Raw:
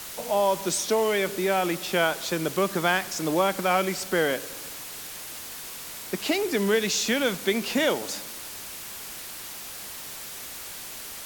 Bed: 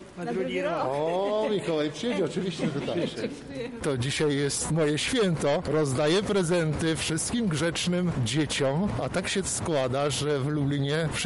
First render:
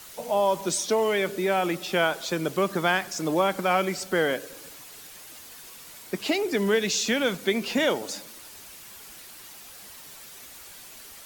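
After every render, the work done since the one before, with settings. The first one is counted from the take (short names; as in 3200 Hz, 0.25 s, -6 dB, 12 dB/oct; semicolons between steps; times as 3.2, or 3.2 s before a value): denoiser 8 dB, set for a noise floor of -39 dBFS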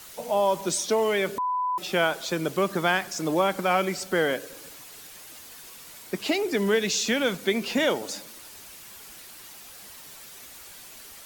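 1.38–1.78 bleep 999 Hz -23.5 dBFS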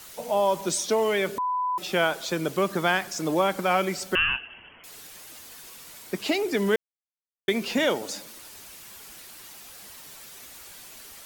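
4.15–4.84 inverted band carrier 3200 Hz; 6.76–7.48 mute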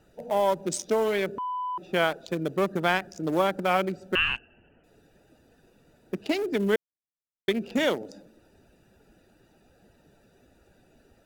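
Wiener smoothing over 41 samples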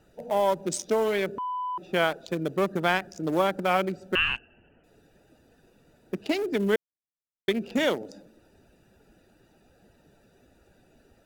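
nothing audible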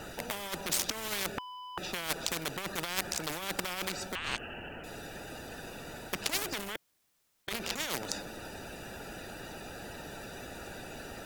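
negative-ratio compressor -29 dBFS, ratio -0.5; spectral compressor 4:1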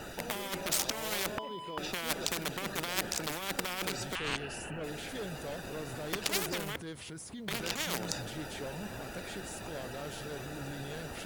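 add bed -17 dB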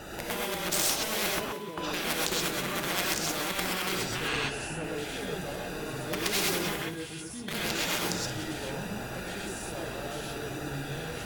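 thinning echo 0.179 s, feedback 38%, level -14 dB; non-linear reverb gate 0.15 s rising, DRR -3.5 dB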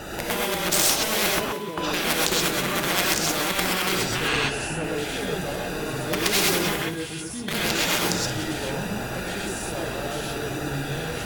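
gain +7 dB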